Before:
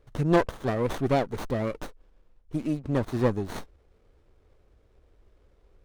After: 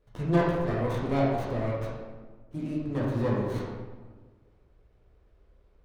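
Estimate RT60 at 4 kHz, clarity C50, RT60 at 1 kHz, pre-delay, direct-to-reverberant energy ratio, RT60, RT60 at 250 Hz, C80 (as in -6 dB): 0.85 s, -0.5 dB, 1.3 s, 9 ms, -6.0 dB, 1.4 s, 1.7 s, 2.0 dB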